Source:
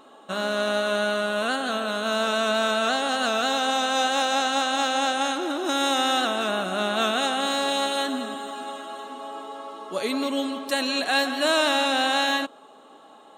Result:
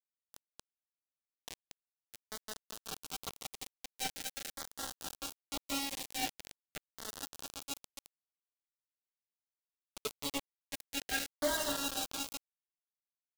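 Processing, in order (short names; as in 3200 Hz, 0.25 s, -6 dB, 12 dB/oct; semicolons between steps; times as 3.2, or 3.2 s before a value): metallic resonator 140 Hz, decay 0.37 s, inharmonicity 0.008; bit-crush 5-bit; LFO notch saw down 0.44 Hz 970–2700 Hz; gain -2 dB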